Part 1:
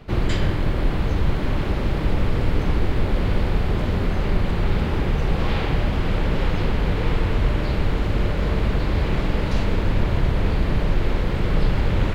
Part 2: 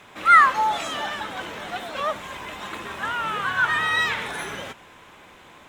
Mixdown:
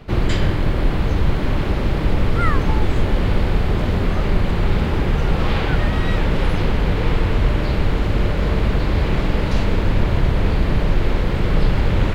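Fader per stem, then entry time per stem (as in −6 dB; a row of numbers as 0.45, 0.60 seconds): +3.0, −11.5 decibels; 0.00, 2.10 seconds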